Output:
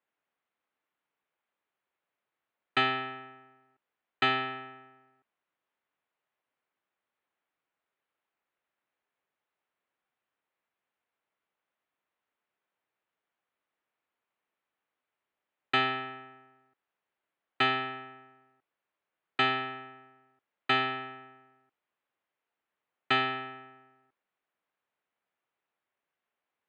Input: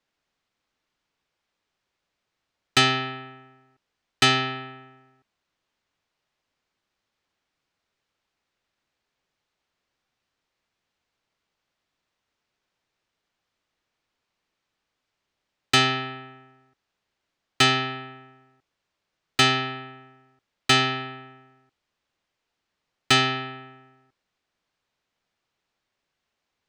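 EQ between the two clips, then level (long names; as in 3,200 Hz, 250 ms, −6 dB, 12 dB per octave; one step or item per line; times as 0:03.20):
moving average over 8 samples
high-pass filter 490 Hz 6 dB per octave
high-frequency loss of the air 140 metres
−2.5 dB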